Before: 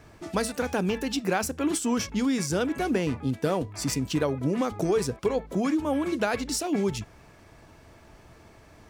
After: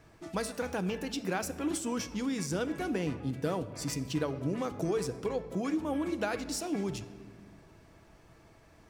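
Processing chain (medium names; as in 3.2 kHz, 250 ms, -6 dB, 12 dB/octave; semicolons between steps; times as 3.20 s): simulated room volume 3700 m³, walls mixed, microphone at 0.65 m; trim -7 dB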